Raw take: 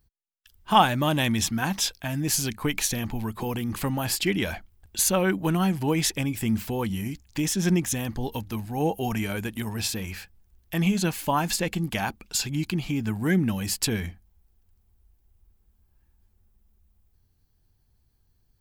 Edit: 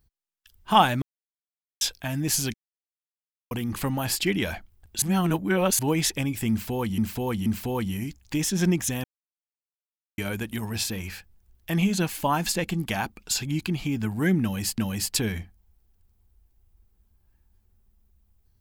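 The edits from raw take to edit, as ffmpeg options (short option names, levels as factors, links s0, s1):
-filter_complex "[0:a]asplit=12[s0][s1][s2][s3][s4][s5][s6][s7][s8][s9][s10][s11];[s0]atrim=end=1.02,asetpts=PTS-STARTPTS,afade=t=out:st=1.016:d=0.004:c=hsin[s12];[s1]atrim=start=1.02:end=1.81,asetpts=PTS-STARTPTS,volume=0[s13];[s2]atrim=start=1.81:end=2.54,asetpts=PTS-STARTPTS,afade=t=in:d=0.004:c=hsin,afade=t=out:st=0.726:d=0.004:c=hsin[s14];[s3]atrim=start=2.54:end=3.51,asetpts=PTS-STARTPTS,volume=0[s15];[s4]atrim=start=3.51:end=5.022,asetpts=PTS-STARTPTS,afade=t=in:d=0.004:c=hsin[s16];[s5]atrim=start=5.018:end=5.792,asetpts=PTS-STARTPTS,areverse[s17];[s6]atrim=start=5.788:end=6.982[s18];[s7]atrim=start=6.498:end=6.982[s19];[s8]atrim=start=6.498:end=8.08,asetpts=PTS-STARTPTS,afade=t=out:st=1.578:d=0.004:c=hsin[s20];[s9]atrim=start=8.08:end=9.22,asetpts=PTS-STARTPTS,volume=0[s21];[s10]atrim=start=9.22:end=13.822,asetpts=PTS-STARTPTS,afade=t=in:d=0.004:c=hsin[s22];[s11]atrim=start=13.458[s23];[s12][s13][s14][s15][s16]concat=n=5:v=0:a=1[s24];[s24][s17]acrossfade=d=0.004:c1=hsin:c2=hsin[s25];[s25][s18]acrossfade=d=0.004:c1=hsin:c2=hsin[s26];[s26][s19]acrossfade=d=0.004:c1=hsin:c2=hsin[s27];[s20][s21][s22]concat=n=3:v=0:a=1[s28];[s27][s28]acrossfade=d=0.004:c1=hsin:c2=hsin[s29];[s29][s23]acrossfade=d=0.004:c1=hsin:c2=hsin"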